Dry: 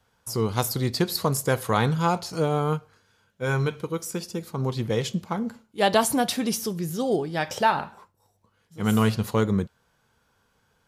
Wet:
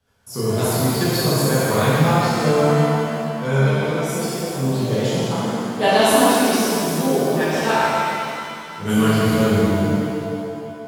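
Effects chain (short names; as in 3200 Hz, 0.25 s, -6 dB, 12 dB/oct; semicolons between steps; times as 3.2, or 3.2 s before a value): rotary speaker horn 7.5 Hz; shimmer reverb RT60 2.5 s, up +7 st, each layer -8 dB, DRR -11 dB; gain -2.5 dB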